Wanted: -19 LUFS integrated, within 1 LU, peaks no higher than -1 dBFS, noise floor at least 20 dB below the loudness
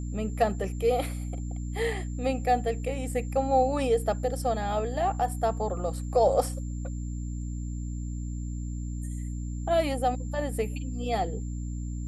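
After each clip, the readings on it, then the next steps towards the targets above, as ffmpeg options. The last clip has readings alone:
hum 60 Hz; highest harmonic 300 Hz; hum level -31 dBFS; steady tone 7.3 kHz; tone level -52 dBFS; loudness -29.5 LUFS; peak level -11.5 dBFS; loudness target -19.0 LUFS
-> -af "bandreject=f=60:t=h:w=4,bandreject=f=120:t=h:w=4,bandreject=f=180:t=h:w=4,bandreject=f=240:t=h:w=4,bandreject=f=300:t=h:w=4"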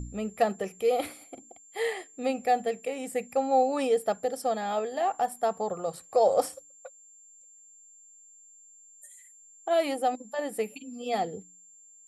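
hum not found; steady tone 7.3 kHz; tone level -52 dBFS
-> -af "bandreject=f=7300:w=30"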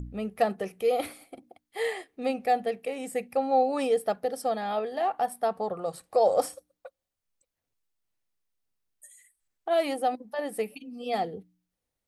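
steady tone not found; loudness -29.0 LUFS; peak level -12.0 dBFS; loudness target -19.0 LUFS
-> -af "volume=3.16"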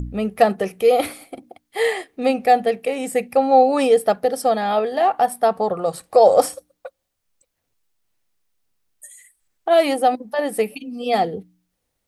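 loudness -19.0 LUFS; peak level -2.0 dBFS; noise floor -76 dBFS

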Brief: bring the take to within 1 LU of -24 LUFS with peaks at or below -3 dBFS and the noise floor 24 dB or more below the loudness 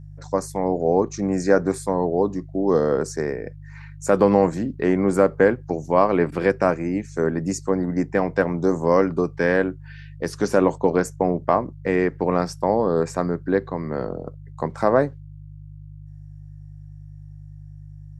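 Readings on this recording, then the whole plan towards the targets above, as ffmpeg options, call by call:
hum 50 Hz; highest harmonic 150 Hz; hum level -37 dBFS; loudness -22.0 LUFS; peak level -2.5 dBFS; loudness target -24.0 LUFS
-> -af "bandreject=f=50:t=h:w=4,bandreject=f=100:t=h:w=4,bandreject=f=150:t=h:w=4"
-af "volume=0.794"

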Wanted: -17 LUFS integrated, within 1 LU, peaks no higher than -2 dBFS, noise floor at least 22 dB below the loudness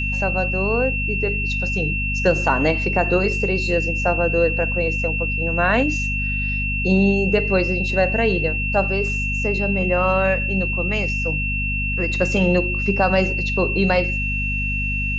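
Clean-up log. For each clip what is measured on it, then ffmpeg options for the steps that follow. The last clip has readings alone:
hum 50 Hz; highest harmonic 250 Hz; hum level -23 dBFS; steady tone 2.7 kHz; tone level -23 dBFS; loudness -19.5 LUFS; peak level -4.0 dBFS; loudness target -17.0 LUFS
-> -af "bandreject=f=50:t=h:w=6,bandreject=f=100:t=h:w=6,bandreject=f=150:t=h:w=6,bandreject=f=200:t=h:w=6,bandreject=f=250:t=h:w=6"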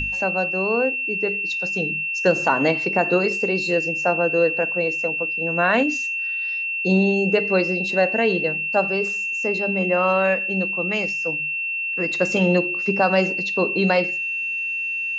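hum not found; steady tone 2.7 kHz; tone level -23 dBFS
-> -af "bandreject=f=2700:w=30"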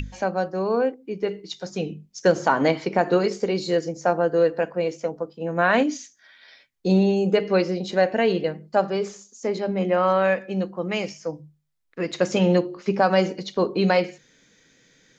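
steady tone not found; loudness -23.0 LUFS; peak level -6.0 dBFS; loudness target -17.0 LUFS
-> -af "volume=2,alimiter=limit=0.794:level=0:latency=1"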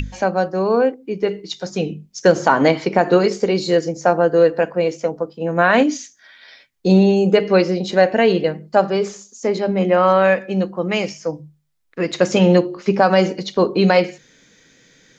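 loudness -17.5 LUFS; peak level -2.0 dBFS; noise floor -54 dBFS

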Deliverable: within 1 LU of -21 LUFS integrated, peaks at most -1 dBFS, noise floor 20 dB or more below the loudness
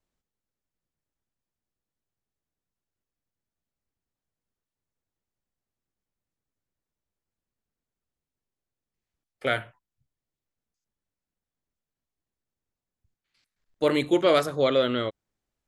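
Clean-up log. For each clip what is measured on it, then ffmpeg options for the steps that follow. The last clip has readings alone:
loudness -24.5 LUFS; peak level -9.5 dBFS; loudness target -21.0 LUFS
-> -af "volume=1.5"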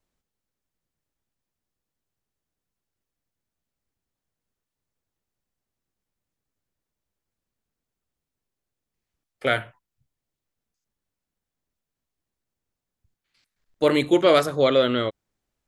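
loudness -21.0 LUFS; peak level -6.0 dBFS; noise floor -86 dBFS

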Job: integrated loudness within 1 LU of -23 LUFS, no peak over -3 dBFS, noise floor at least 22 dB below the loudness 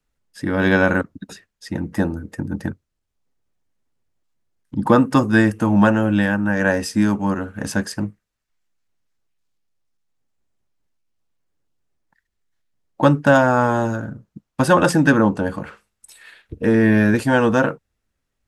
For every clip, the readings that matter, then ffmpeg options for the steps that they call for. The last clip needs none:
loudness -18.0 LUFS; peak level -2.0 dBFS; loudness target -23.0 LUFS
-> -af "volume=0.562"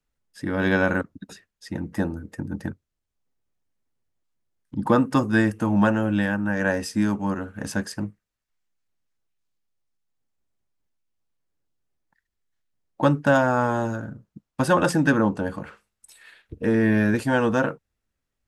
loudness -23.0 LUFS; peak level -7.0 dBFS; noise floor -83 dBFS

